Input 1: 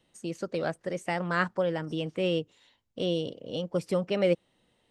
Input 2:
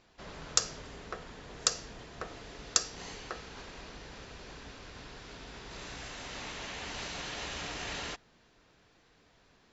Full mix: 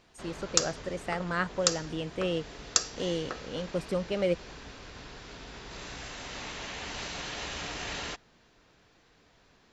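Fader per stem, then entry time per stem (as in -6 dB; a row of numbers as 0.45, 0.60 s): -3.0, +2.0 dB; 0.00, 0.00 s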